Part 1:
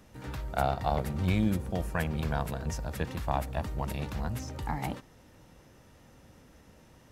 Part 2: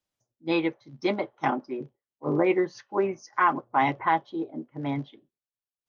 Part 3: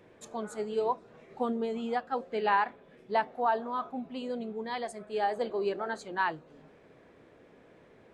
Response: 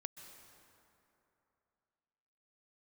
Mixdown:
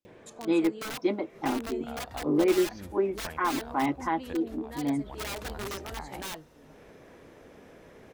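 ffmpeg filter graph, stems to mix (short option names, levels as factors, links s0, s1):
-filter_complex "[0:a]equalizer=f=140:t=o:w=1.1:g=-10.5,acompressor=threshold=0.0224:ratio=6,adelay=1300,volume=0.708[s0];[1:a]equalizer=f=300:w=1.5:g=10.5,volume=0.422,asplit=2[s1][s2];[2:a]adynamicequalizer=threshold=0.00501:dfrequency=1400:dqfactor=2:tfrequency=1400:tqfactor=2:attack=5:release=100:ratio=0.375:range=3:mode=cutabove:tftype=bell,acompressor=mode=upward:threshold=0.0178:ratio=2.5,aeval=exprs='(mod(21.1*val(0)+1,2)-1)/21.1':c=same,adelay=50,volume=0.501,asplit=2[s3][s4];[s4]volume=0.0841[s5];[s2]apad=whole_len=371005[s6];[s0][s6]sidechaincompress=threshold=0.00631:ratio=5:attack=7.6:release=115[s7];[3:a]atrim=start_sample=2205[s8];[s5][s8]afir=irnorm=-1:irlink=0[s9];[s7][s1][s3][s9]amix=inputs=4:normalize=0"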